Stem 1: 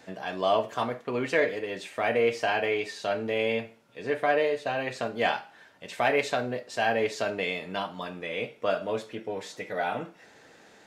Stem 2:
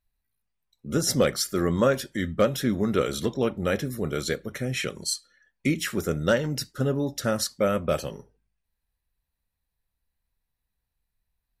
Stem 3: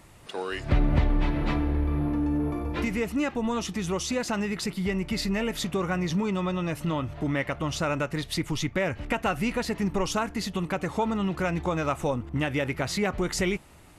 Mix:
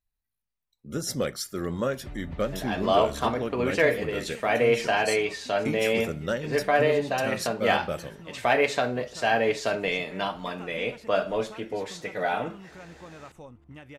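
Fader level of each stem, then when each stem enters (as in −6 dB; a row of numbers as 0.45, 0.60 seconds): +2.5, −6.5, −18.5 decibels; 2.45, 0.00, 1.35 seconds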